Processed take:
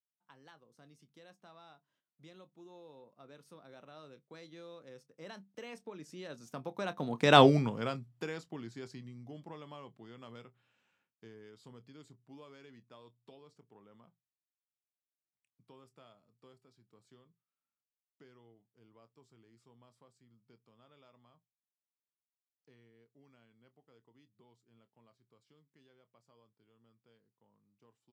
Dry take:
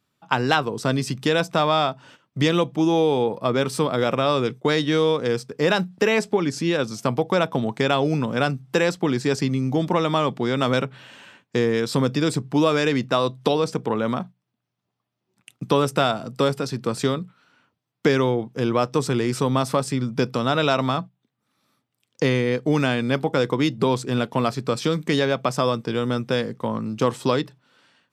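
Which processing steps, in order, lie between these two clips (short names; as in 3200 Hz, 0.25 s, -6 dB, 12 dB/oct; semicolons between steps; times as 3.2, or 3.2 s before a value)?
Doppler pass-by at 7.4, 25 m/s, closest 1.5 m; doubler 26 ms -14 dB; gain +3 dB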